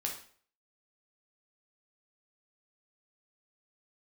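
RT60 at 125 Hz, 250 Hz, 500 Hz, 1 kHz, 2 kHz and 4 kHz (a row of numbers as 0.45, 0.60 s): 0.50, 0.45, 0.50, 0.50, 0.45, 0.45 s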